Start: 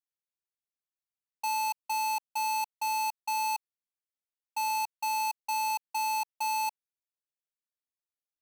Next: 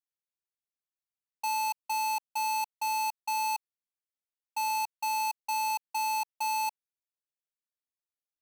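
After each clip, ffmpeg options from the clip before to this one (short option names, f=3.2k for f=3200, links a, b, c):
-af anull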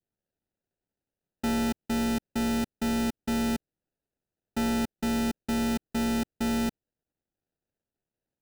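-af "acrusher=samples=40:mix=1:aa=0.000001,adynamicequalizer=threshold=0.00398:dfrequency=1000:dqfactor=0.77:tfrequency=1000:tqfactor=0.77:attack=5:release=100:ratio=0.375:range=3:mode=cutabove:tftype=bell,volume=3.5dB"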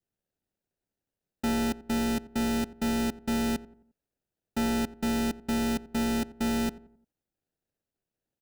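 -filter_complex "[0:a]asplit=2[a][b];[b]adelay=88,lowpass=f=1.3k:p=1,volume=-17dB,asplit=2[c][d];[d]adelay=88,lowpass=f=1.3k:p=1,volume=0.43,asplit=2[e][f];[f]adelay=88,lowpass=f=1.3k:p=1,volume=0.43,asplit=2[g][h];[h]adelay=88,lowpass=f=1.3k:p=1,volume=0.43[i];[a][c][e][g][i]amix=inputs=5:normalize=0"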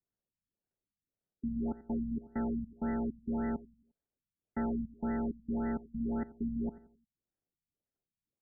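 -af "afftfilt=real='re*lt(b*sr/1024,230*pow(2100/230,0.5+0.5*sin(2*PI*1.8*pts/sr)))':imag='im*lt(b*sr/1024,230*pow(2100/230,0.5+0.5*sin(2*PI*1.8*pts/sr)))':win_size=1024:overlap=0.75,volume=-5.5dB"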